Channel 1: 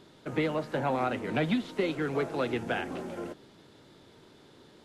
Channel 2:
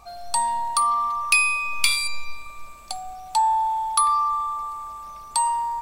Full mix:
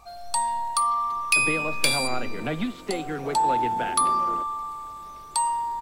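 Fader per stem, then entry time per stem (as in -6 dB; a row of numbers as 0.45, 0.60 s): -0.5, -2.5 dB; 1.10, 0.00 s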